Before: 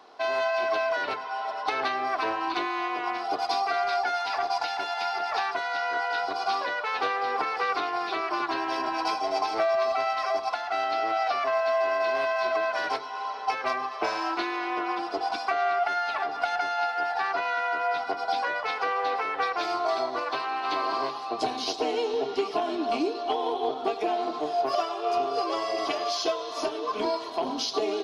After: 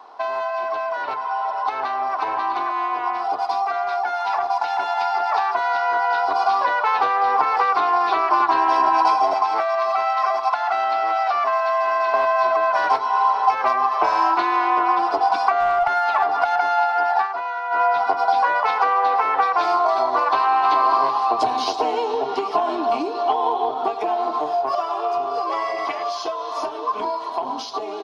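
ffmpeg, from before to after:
-filter_complex "[0:a]asplit=2[a][b];[b]afade=t=in:st=1.28:d=0.01,afade=t=out:st=2.18:d=0.01,aecho=0:1:540|1080:0.707946|0.0707946[c];[a][c]amix=inputs=2:normalize=0,asettb=1/sr,asplit=3[d][e][f];[d]atrim=end=3.554[g];[e]atrim=start=3.55:end=5,asetpts=PTS-STARTPTS,afade=t=in:d=0.004:c=qsin,afade=t=out:st=1.446:d=0.004:c=qsin,bandreject=f=4.7k:w=12[h];[f]atrim=start=4.996[i];[g][h]acrossfade=d=0.004:c1=hsin:c2=qsin[j];[j][i]acrossfade=d=0.004:c1=qsin:c2=hsin,asettb=1/sr,asplit=3[k][l][m];[k]atrim=end=9.334[n];[l]atrim=start=9.33:end=12.14,asetpts=PTS-STARTPTS,afade=t=in:d=0.004:c=qsin,afade=t=out:st=2.806:d=0.004:c=qsin,acrossover=split=1000|3300[o][p][q];[o]acompressor=threshold=-39dB:ratio=4[r];[p]acompressor=threshold=-35dB:ratio=4[s];[q]acompressor=threshold=-49dB:ratio=4[t];[r][s][t]amix=inputs=3:normalize=0[u];[m]atrim=start=12.136[v];[n][u]acrossfade=d=0.004:c1=hsin:c2=qsin[w];[w][v]acrossfade=d=0.004:c1=qsin:c2=hsin,asettb=1/sr,asplit=3[x][y][z];[x]atrim=end=15.604[aa];[y]atrim=start=15.6:end=16.26,asetpts=PTS-STARTPTS,afade=t=in:d=0.004:c=qsin,afade=t=out:st=0.656:d=0.004:c=qsin,aeval=exprs='clip(val(0),-1,0.0794)':c=same[ab];[z]atrim=start=16.256[ac];[aa][ab]acrossfade=d=0.004:c1=hsin:c2=qsin[ad];[ad][ac]acrossfade=d=0.004:c1=qsin:c2=hsin,asettb=1/sr,asplit=3[ae][af][ag];[ae]atrim=end=25.514[ah];[af]atrim=start=25.51:end=26.03,asetpts=PTS-STARTPTS,afade=t=in:d=0.004:c=qsin,afade=t=out:st=0.516:d=0.004:c=qsin,equalizer=f=2.1k:t=o:w=0.42:g=12[ai];[ag]atrim=start=26.026[aj];[ah][ai]acrossfade=d=0.004:c1=hsin:c2=qsin[ak];[ak][aj]acrossfade=d=0.004:c1=qsin:c2=hsin,asplit=3[al][am][an];[al]atrim=end=17.28,asetpts=PTS-STARTPTS,afade=t=out:st=17.09:d=0.19:c=qsin:silence=0.237137[ao];[am]atrim=start=17.28:end=17.7,asetpts=PTS-STARTPTS,volume=-12.5dB[ap];[an]atrim=start=17.7,asetpts=PTS-STARTPTS,afade=t=in:d=0.19:c=qsin:silence=0.237137[aq];[ao][ap][aq]concat=n=3:v=0:a=1,acrossover=split=170[ar][as];[as]acompressor=threshold=-29dB:ratio=6[at];[ar][at]amix=inputs=2:normalize=0,equalizer=f=950:t=o:w=1.1:g=14,dynaudnorm=f=360:g=31:m=9dB,volume=-1.5dB"

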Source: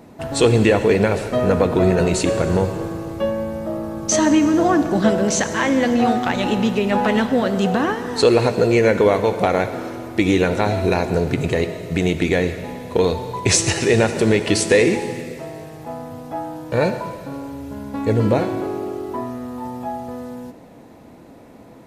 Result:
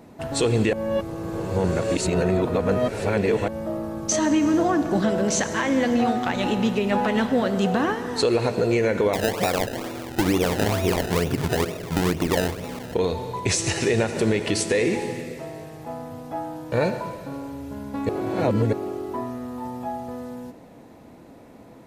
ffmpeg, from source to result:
-filter_complex "[0:a]asettb=1/sr,asplit=3[a][b][c];[a]atrim=end=9.134[d];[b]atrim=start=9.13:end=12.95,asetpts=PTS-STARTPTS,afade=t=in:d=0.004:c=qsin,afade=t=out:st=3.816:d=0.004:c=qsin,acrusher=samples=27:mix=1:aa=0.000001:lfo=1:lforange=27:lforate=2.2[e];[c]atrim=start=12.946[f];[d][e]acrossfade=d=0.004:c1=hsin:c2=qsin[g];[g][f]acrossfade=d=0.004:c1=qsin:c2=hsin,asplit=5[h][i][j][k][l];[h]atrim=end=0.732[m];[i]atrim=start=0.728:end=3.482,asetpts=PTS-STARTPTS,areverse[n];[j]atrim=start=3.478:end=18.092[o];[k]atrim=start=18.088:end=18.732,asetpts=PTS-STARTPTS,areverse[p];[l]atrim=start=18.728[q];[m][n]acrossfade=d=0.004:c1=hsin:c2=hsin[r];[r][o]acrossfade=d=0.004:c1=hsin:c2=hsin[s];[s][p]acrossfade=d=0.004:c1=hsin:c2=hsin[t];[t][q]acrossfade=d=0.004:c1=hsin:c2=hsin,alimiter=limit=-9dB:level=0:latency=1:release=138,volume=-3dB"

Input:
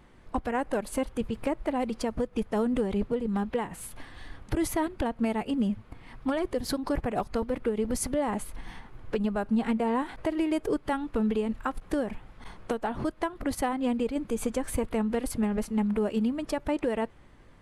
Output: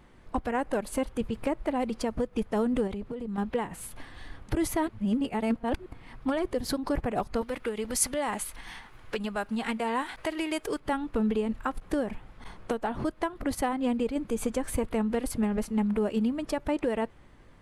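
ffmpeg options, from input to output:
-filter_complex "[0:a]asettb=1/sr,asplit=3[a][b][c];[a]atrim=end=2.874[d];[b]atrim=start=2.87:end=3.38,asetpts=PTS-STARTPTS,afade=t=in:d=0.004:c=qsin,afade=t=out:st=0.506:d=0.004:c=qsin,acompressor=threshold=-31dB:ratio=10:attack=3.2:release=140:knee=1:detection=peak[e];[c]atrim=start=3.376[f];[d][e]acrossfade=d=0.004:c1=hsin:c2=qsin[g];[g][f]acrossfade=d=0.004:c1=qsin:c2=hsin,asettb=1/sr,asplit=3[h][i][j];[h]atrim=end=7.414[k];[i]atrim=start=7.41:end=10.8,asetpts=PTS-STARTPTS,afade=t=in:d=0.004:c=qsin,afade=t=out:st=3.386:d=0.004:c=qsin,tiltshelf=f=840:g=-7[l];[j]atrim=start=10.796[m];[k][l]acrossfade=d=0.004:c1=hsin:c2=qsin[n];[n][m]acrossfade=d=0.004:c1=qsin:c2=hsin,asplit=3[o][p][q];[o]atrim=end=4.892[r];[p]atrim=start=4.888:end=5.862,asetpts=PTS-STARTPTS,areverse[s];[q]atrim=start=5.858[t];[r][s]acrossfade=d=0.004:c1=hsin:c2=hsin[u];[u][t]acrossfade=d=0.004:c1=hsin:c2=hsin"

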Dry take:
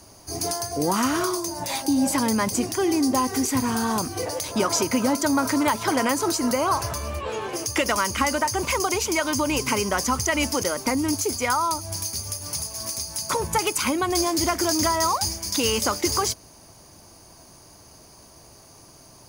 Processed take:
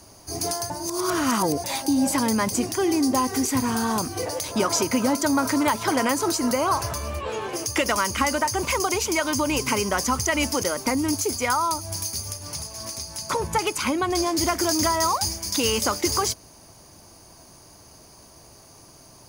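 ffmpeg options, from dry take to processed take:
-filter_complex "[0:a]asettb=1/sr,asplit=3[a][b][c];[a]atrim=end=12.324[d];[b]atrim=start=12.32:end=14.38,asetpts=PTS-STARTPTS,afade=t=in:d=0.004:c=qsin,afade=t=out:st=2.056:d=0.004:c=qsin,highshelf=f=7.7k:g=-8.5[e];[c]atrim=start=14.376[f];[d][e]acrossfade=d=0.004:c1=hsin:c2=qsin[g];[g][f]acrossfade=d=0.004:c1=qsin:c2=hsin,asplit=3[h][i][j];[h]atrim=end=0.702[k];[i]atrim=start=0.698:end=1.642,asetpts=PTS-STARTPTS,areverse[l];[j]atrim=start=1.638[m];[k][l]acrossfade=d=0.004:c1=hsin:c2=hsin[n];[n][m]acrossfade=d=0.004:c1=hsin:c2=hsin"

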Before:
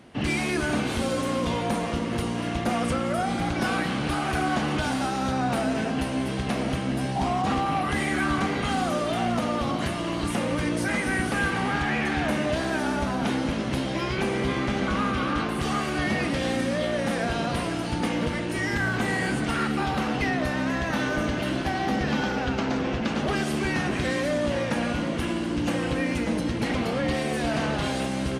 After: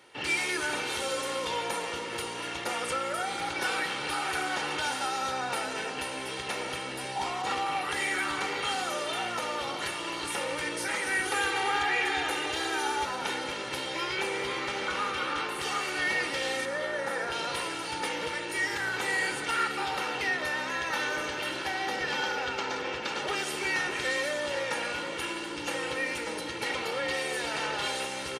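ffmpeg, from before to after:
-filter_complex "[0:a]asettb=1/sr,asplit=3[a][b][c];[a]atrim=end=11.254[d];[b]atrim=start=11.25:end=13.05,asetpts=PTS-STARTPTS,afade=t=in:d=0.004:c=qsin,afade=t=out:st=1.796:d=0.004:c=qsin,aecho=1:1:2.5:0.69,atrim=end_sample=79380[e];[c]atrim=start=13.046[f];[d][e]acrossfade=d=0.004:c1=hsin:c2=qsin[g];[g][f]acrossfade=d=0.004:c1=qsin:c2=hsin,asettb=1/sr,asplit=3[h][i][j];[h]atrim=end=16.654[k];[i]atrim=start=16.65:end=17.32,asetpts=PTS-STARTPTS,afade=t=in:d=0.004:c=qsin,afade=t=out:st=0.666:d=0.004:c=qsin,highshelf=f=2.1k:t=q:w=1.5:g=-6[l];[j]atrim=start=17.316[m];[k][l]acrossfade=d=0.004:c1=hsin:c2=qsin[n];[n][m]acrossfade=d=0.004:c1=qsin:c2=hsin,highpass=f=1.1k:p=1,aecho=1:1:2.2:0.62"

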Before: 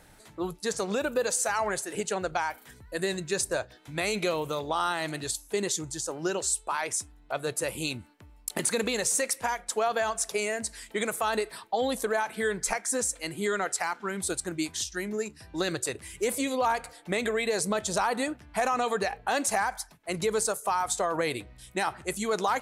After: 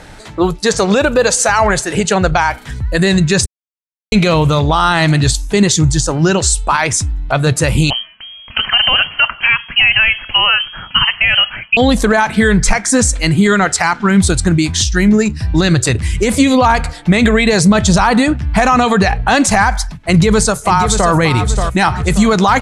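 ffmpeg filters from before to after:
-filter_complex "[0:a]asettb=1/sr,asplit=3[a][b][c];[a]atrim=end=7.904[d];[b]atrim=start=7.9:end=11.77,asetpts=PTS-STARTPTS,afade=t=in:d=0.004:c=qsin,afade=t=out:st=3.866:d=0.004:c=qsin,lowpass=f=2.8k:t=q:w=0.5098,lowpass=f=2.8k:t=q:w=0.6013,lowpass=f=2.8k:t=q:w=0.9,lowpass=f=2.8k:t=q:w=2.563,afreqshift=-3300[e];[c]atrim=start=11.766[f];[d][e]acrossfade=d=0.004:c1=hsin:c2=qsin[g];[g][f]acrossfade=d=0.004:c1=qsin:c2=hsin,asplit=2[h][i];[i]afade=t=in:st=19.96:d=0.01,afade=t=out:st=21.11:d=0.01,aecho=0:1:580|1160|1740|2320:0.354813|0.141925|0.0567701|0.0227081[j];[h][j]amix=inputs=2:normalize=0,asplit=3[k][l][m];[k]atrim=end=3.46,asetpts=PTS-STARTPTS,afade=t=out:st=3.456:d=0.004:c=hsin[n];[l]atrim=start=3.46:end=4.12,asetpts=PTS-STARTPTS,volume=0[o];[m]atrim=start=4.12,asetpts=PTS-STARTPTS,afade=t=in:d=0.004:c=hsin[p];[n][o][p]concat=n=3:v=0:a=1,lowpass=6.4k,asubboost=boost=8:cutoff=150,alimiter=level_in=20.5dB:limit=-1dB:release=50:level=0:latency=1,volume=-1dB"

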